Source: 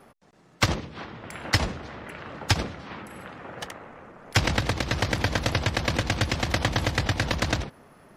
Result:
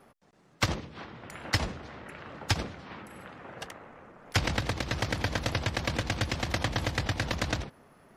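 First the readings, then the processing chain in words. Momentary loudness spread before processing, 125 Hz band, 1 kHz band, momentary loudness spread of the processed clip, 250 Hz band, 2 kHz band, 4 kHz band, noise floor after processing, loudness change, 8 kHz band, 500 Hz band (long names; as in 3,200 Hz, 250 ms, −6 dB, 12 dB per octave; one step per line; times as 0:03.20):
14 LU, −5.0 dB, −5.0 dB, 14 LU, −5.0 dB, −5.0 dB, −5.0 dB, −62 dBFS, −5.0 dB, −5.0 dB, −5.0 dB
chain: wow of a warped record 78 rpm, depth 100 cents
level −5 dB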